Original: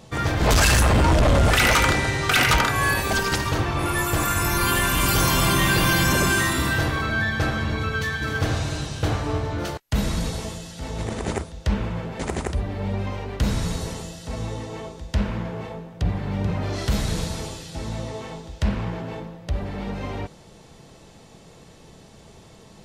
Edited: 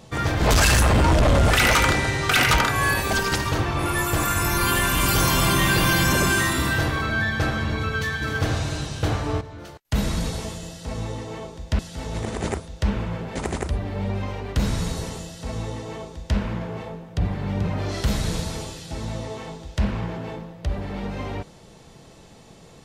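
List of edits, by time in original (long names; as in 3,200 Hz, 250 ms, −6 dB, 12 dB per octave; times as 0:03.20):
0:09.41–0:09.85: clip gain −11.5 dB
0:14.05–0:15.21: duplicate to 0:10.63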